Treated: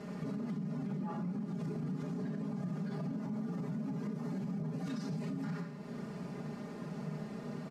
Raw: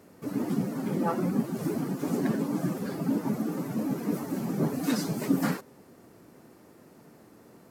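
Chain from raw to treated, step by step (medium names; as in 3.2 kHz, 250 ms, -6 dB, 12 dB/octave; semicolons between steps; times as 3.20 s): low-pass 5.2 kHz 12 dB/octave; comb 4.9 ms, depth 98%; de-hum 83 Hz, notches 35; compression 4:1, threshold -44 dBFS, peak gain reduction 22 dB; peaking EQ 150 Hz +11 dB 0.74 oct; band-stop 370 Hz, Q 12; Schroeder reverb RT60 0.92 s, combs from 26 ms, DRR 6 dB; peak limiter -36.5 dBFS, peak gain reduction 11.5 dB; trim +5 dB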